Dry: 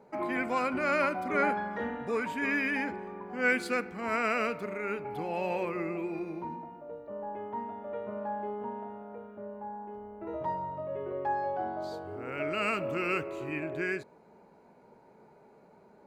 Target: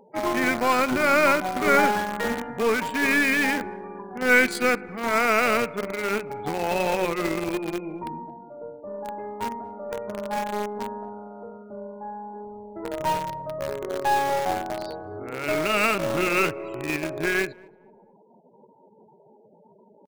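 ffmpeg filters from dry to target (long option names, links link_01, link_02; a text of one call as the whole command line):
ffmpeg -i in.wav -filter_complex "[0:a]afftfilt=real='re*gte(hypot(re,im),0.00355)':imag='im*gte(hypot(re,im),0.00355)':win_size=1024:overlap=0.75,highshelf=frequency=5200:gain=6.5,asplit=2[link_01][link_02];[link_02]acrusher=bits=4:mix=0:aa=0.000001,volume=-6dB[link_03];[link_01][link_03]amix=inputs=2:normalize=0,aeval=exprs='0.335*(cos(1*acos(clip(val(0)/0.335,-1,1)))-cos(1*PI/2))+0.00944*(cos(4*acos(clip(val(0)/0.335,-1,1)))-cos(4*PI/2))+0.0075*(cos(8*acos(clip(val(0)/0.335,-1,1)))-cos(8*PI/2))':channel_layout=same,atempo=0.8,asplit=2[link_04][link_05];[link_05]adelay=226,lowpass=frequency=1000:poles=1,volume=-23dB,asplit=2[link_06][link_07];[link_07]adelay=226,lowpass=frequency=1000:poles=1,volume=0.41,asplit=2[link_08][link_09];[link_09]adelay=226,lowpass=frequency=1000:poles=1,volume=0.41[link_10];[link_06][link_08][link_10]amix=inputs=3:normalize=0[link_11];[link_04][link_11]amix=inputs=2:normalize=0,volume=4.5dB" out.wav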